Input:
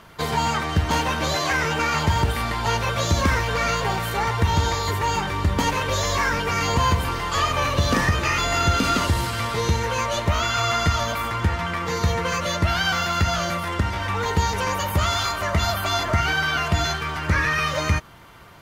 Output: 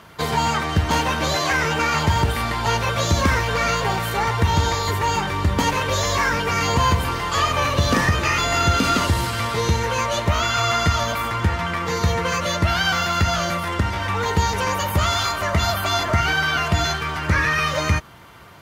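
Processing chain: high-pass 50 Hz; trim +2 dB

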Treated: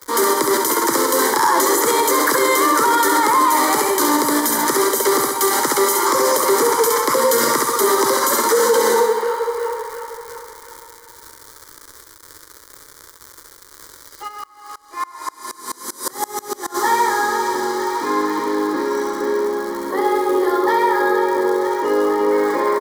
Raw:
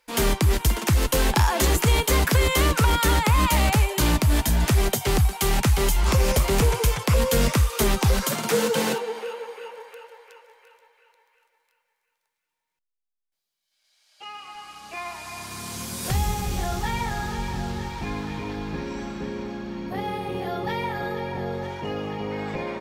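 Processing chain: Bessel high-pass 390 Hz, order 8; tilt shelf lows +4 dB, about 920 Hz; comb 1 ms, depth 35%; crackle 210 per s -37 dBFS; static phaser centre 720 Hz, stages 6; flutter echo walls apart 11.6 m, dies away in 0.67 s; loudness maximiser +21.5 dB; 14.27–16.74 s: sawtooth tremolo in dB swelling 2.7 Hz -> 8 Hz, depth 27 dB; trim -5.5 dB

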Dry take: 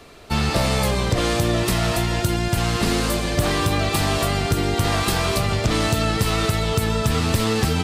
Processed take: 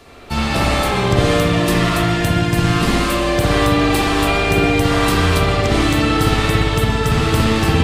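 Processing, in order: spring tank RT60 1.4 s, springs 58 ms, chirp 65 ms, DRR -5 dB; 4.26–4.79 s: whistle 2.4 kHz -21 dBFS

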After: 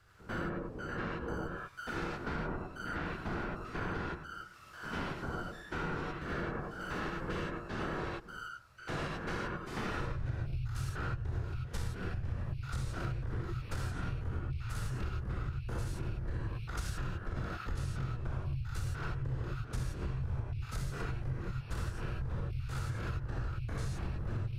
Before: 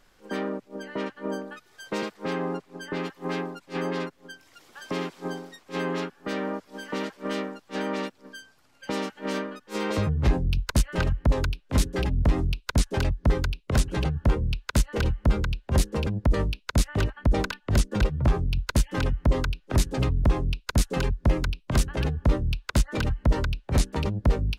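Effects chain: spectrogram pixelated in time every 100 ms; peaking EQ 1.6 kHz +9 dB 0.53 oct; whisper effect; bass shelf 170 Hz +4.5 dB; gated-style reverb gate 120 ms rising, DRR -2.5 dB; frequency shift -140 Hz; compression 6:1, threshold -26 dBFS, peak gain reduction 15.5 dB; trim -7.5 dB

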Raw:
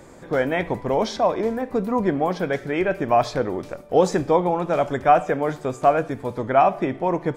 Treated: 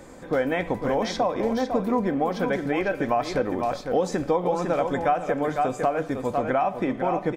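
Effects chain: delay 502 ms -8.5 dB; compression 6:1, threshold -20 dBFS, peak gain reduction 10 dB; comb 3.9 ms, depth 30%

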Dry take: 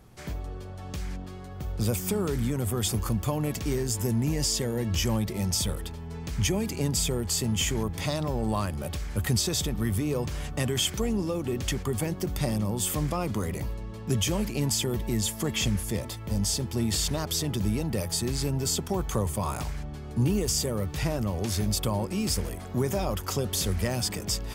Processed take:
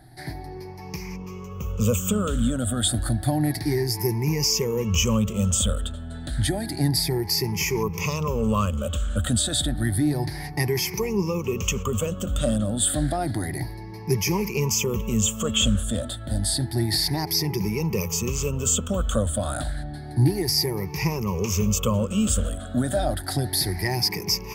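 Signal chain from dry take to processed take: drifting ripple filter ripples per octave 0.79, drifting +0.3 Hz, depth 20 dB

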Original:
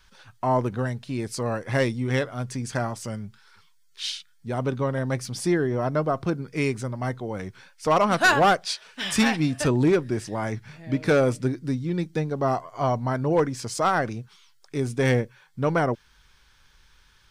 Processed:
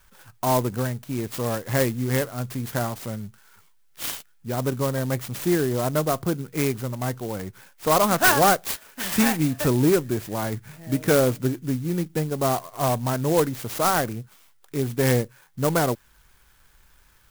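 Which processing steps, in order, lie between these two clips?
sampling jitter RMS 0.071 ms; trim +1 dB

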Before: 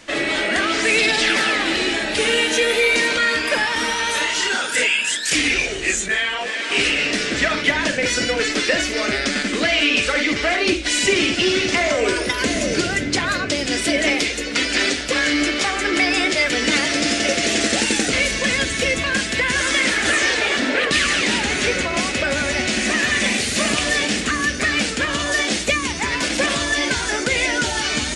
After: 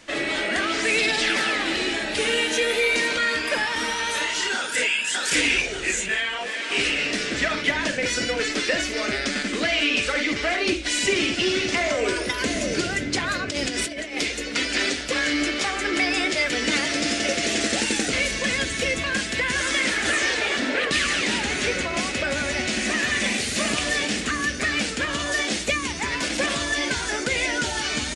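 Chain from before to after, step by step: 4.55–5.02 s: echo throw 590 ms, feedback 35%, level -1.5 dB; 13.48–14.17 s: compressor with a negative ratio -23 dBFS, ratio -0.5; trim -4.5 dB

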